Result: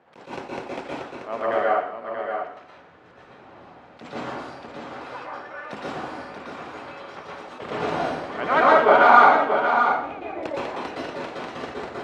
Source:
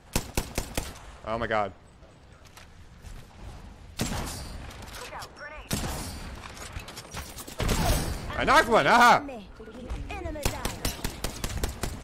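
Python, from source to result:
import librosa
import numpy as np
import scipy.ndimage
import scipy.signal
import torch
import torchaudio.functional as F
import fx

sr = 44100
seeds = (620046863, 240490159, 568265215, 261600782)

y = fx.bandpass_edges(x, sr, low_hz=350.0, high_hz=3000.0)
y = fx.high_shelf(y, sr, hz=2200.0, db=-10.5)
y = y + 10.0 ** (-7.0 / 20.0) * np.pad(y, (int(634 * sr / 1000.0), 0))[:len(y)]
y = fx.rev_plate(y, sr, seeds[0], rt60_s=0.66, hf_ratio=0.9, predelay_ms=105, drr_db=-5.5)
y = fx.attack_slew(y, sr, db_per_s=180.0)
y = y * 10.0 ** (1.0 / 20.0)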